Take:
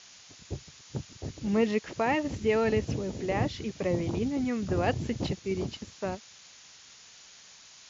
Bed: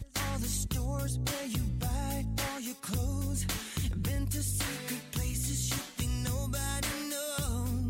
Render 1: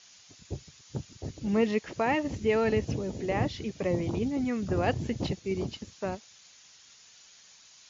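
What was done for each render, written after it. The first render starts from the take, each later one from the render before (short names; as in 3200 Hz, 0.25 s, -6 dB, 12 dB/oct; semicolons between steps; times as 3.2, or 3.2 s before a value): denoiser 6 dB, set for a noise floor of -53 dBFS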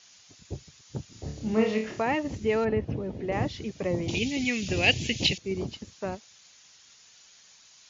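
1.09–2.02 flutter echo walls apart 4.7 m, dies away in 0.4 s; 2.64–3.31 LPF 1800 Hz -> 3000 Hz; 4.08–5.38 resonant high shelf 1800 Hz +12.5 dB, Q 3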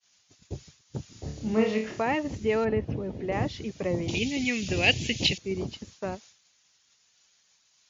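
expander -47 dBFS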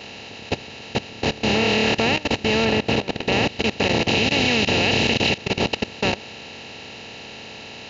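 per-bin compression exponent 0.2; level quantiser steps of 19 dB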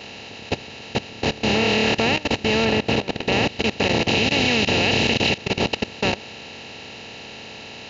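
nothing audible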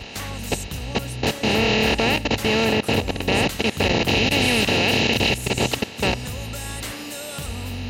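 add bed +1.5 dB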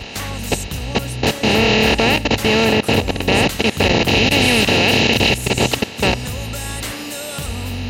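gain +5 dB; limiter -1 dBFS, peak gain reduction 1.5 dB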